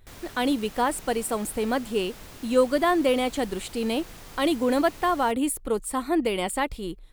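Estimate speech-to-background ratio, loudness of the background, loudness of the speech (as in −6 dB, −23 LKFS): 19.0 dB, −44.5 LKFS, −25.5 LKFS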